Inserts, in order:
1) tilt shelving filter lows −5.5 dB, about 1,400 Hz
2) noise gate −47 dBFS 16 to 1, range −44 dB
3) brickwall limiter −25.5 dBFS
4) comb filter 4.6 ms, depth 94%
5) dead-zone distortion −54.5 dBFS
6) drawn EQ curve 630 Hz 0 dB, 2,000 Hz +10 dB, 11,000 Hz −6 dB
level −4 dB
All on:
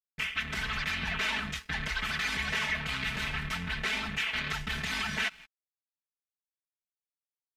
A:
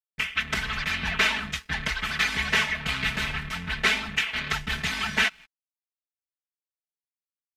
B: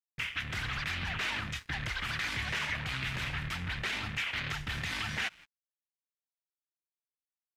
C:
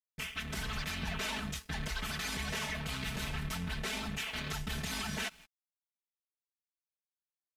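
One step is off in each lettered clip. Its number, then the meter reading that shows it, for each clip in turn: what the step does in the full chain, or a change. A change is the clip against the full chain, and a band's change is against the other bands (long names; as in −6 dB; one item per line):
3, average gain reduction 3.0 dB
4, change in integrated loudness −2.5 LU
6, 2 kHz band −8.5 dB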